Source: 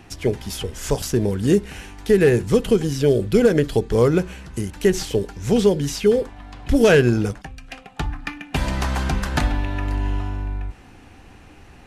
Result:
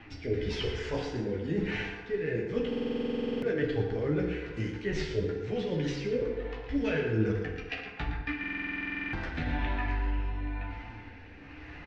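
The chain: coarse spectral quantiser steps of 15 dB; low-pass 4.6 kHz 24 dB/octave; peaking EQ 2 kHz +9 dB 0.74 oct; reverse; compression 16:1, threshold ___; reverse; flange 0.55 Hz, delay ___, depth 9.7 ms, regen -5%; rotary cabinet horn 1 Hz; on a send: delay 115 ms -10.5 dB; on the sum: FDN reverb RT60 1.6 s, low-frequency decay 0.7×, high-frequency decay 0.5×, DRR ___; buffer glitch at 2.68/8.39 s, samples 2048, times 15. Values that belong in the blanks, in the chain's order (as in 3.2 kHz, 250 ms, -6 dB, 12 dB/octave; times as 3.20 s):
-24 dBFS, 8.6 ms, 1 dB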